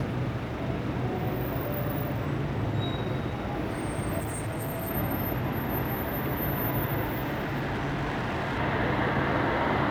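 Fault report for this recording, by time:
0:04.19–0:04.91: clipping −29 dBFS
0:07.03–0:08.59: clipping −26.5 dBFS

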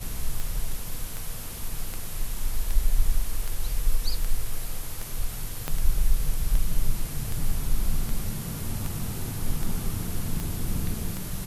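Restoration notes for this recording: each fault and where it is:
scratch tick 78 rpm
0:05.68: click −13 dBFS

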